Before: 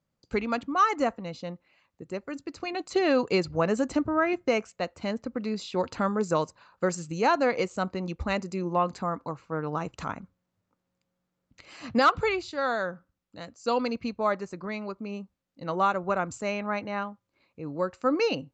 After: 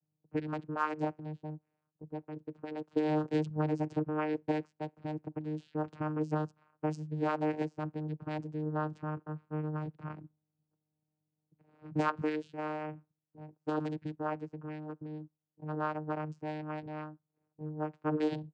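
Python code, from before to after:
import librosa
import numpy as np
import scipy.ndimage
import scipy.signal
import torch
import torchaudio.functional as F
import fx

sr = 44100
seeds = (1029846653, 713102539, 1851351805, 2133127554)

y = fx.env_lowpass(x, sr, base_hz=770.0, full_db=-22.0)
y = fx.vocoder(y, sr, bands=8, carrier='saw', carrier_hz=153.0)
y = F.gain(torch.from_numpy(y), -6.5).numpy()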